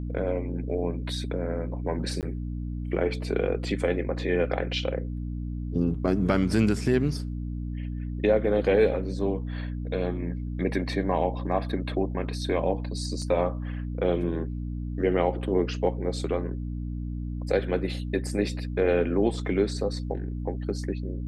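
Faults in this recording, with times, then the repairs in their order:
hum 60 Hz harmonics 5 -32 dBFS
2.21–2.23 s: dropout 18 ms
13.22 s: dropout 2.6 ms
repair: de-hum 60 Hz, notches 5; interpolate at 2.21 s, 18 ms; interpolate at 13.22 s, 2.6 ms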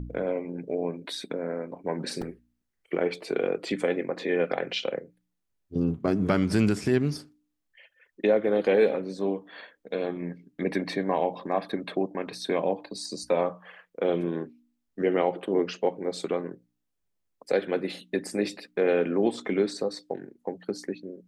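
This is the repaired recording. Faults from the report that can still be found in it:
nothing left

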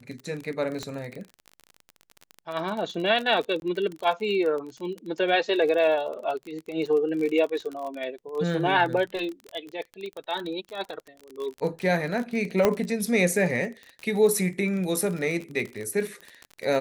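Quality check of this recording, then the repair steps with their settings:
crackle 30 per s -30 dBFS
0.83 s: pop -19 dBFS
3.60–3.62 s: dropout 21 ms
12.65 s: pop -7 dBFS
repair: de-click; interpolate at 3.60 s, 21 ms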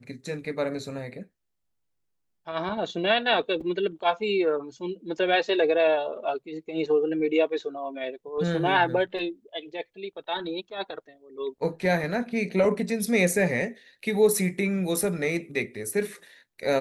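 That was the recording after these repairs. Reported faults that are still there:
nothing left

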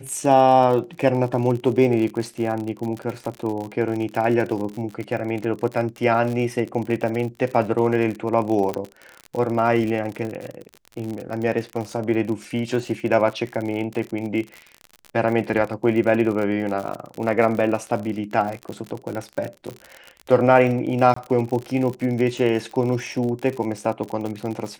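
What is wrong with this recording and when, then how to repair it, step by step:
crackle 57 per s -27 dBFS
8.74 s: pop -11 dBFS
21.14–21.16 s: dropout 24 ms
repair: de-click; interpolate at 21.14 s, 24 ms

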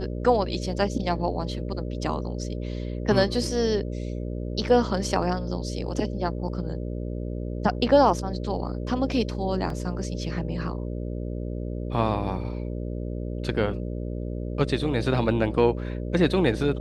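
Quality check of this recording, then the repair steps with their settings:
buzz 60 Hz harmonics 10 -31 dBFS
9.70 s: dropout 2.5 ms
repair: de-hum 60 Hz, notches 10; interpolate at 9.70 s, 2.5 ms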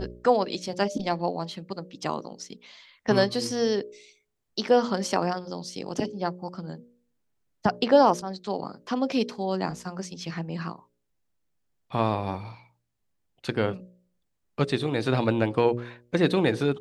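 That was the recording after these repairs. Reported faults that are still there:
nothing left

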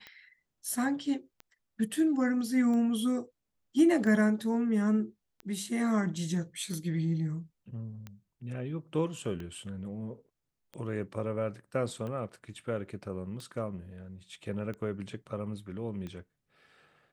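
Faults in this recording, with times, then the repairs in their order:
tick 45 rpm -29 dBFS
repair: de-click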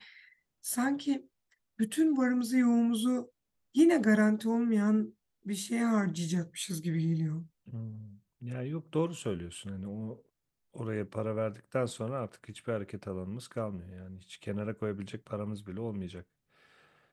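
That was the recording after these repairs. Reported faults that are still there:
nothing left

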